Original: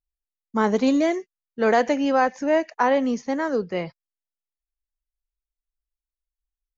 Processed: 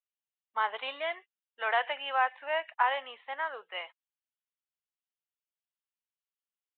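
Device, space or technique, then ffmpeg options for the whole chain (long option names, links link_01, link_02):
musical greeting card: -af "aresample=8000,aresample=44100,highpass=frequency=800:width=0.5412,highpass=frequency=800:width=1.3066,equalizer=frequency=2900:width_type=o:width=0.25:gain=6,volume=-3.5dB"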